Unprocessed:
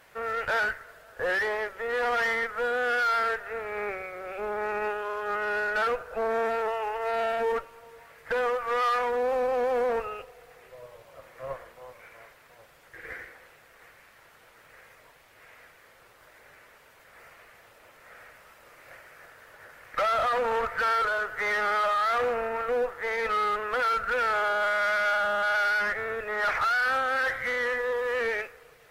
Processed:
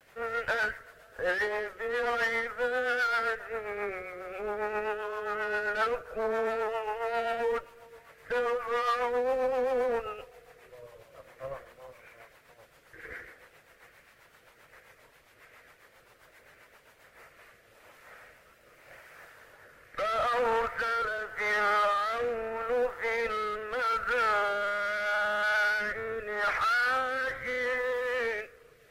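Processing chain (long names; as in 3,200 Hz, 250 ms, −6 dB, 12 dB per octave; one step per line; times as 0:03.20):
rotating-speaker cabinet horn 7.5 Hz, later 0.8 Hz, at 0:16.87
pitch vibrato 0.44 Hz 31 cents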